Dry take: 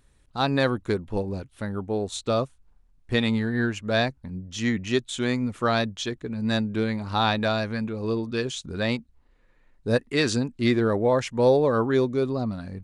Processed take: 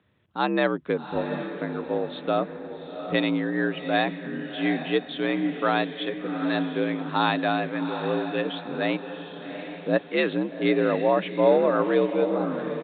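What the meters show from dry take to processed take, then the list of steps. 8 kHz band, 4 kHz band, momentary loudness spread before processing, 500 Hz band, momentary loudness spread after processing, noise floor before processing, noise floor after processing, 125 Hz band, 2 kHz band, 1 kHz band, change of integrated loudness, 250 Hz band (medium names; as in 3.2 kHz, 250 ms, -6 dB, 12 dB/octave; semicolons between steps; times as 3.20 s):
under -40 dB, -2.5 dB, 9 LU, +0.5 dB, 11 LU, -61 dBFS, -41 dBFS, -6.5 dB, +1.0 dB, +2.0 dB, 0.0 dB, 0.0 dB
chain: frequency shift +59 Hz; high-pass 180 Hz 12 dB/octave; on a send: echo that smears into a reverb 763 ms, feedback 43%, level -9 dB; on the sum: resampled via 8 kHz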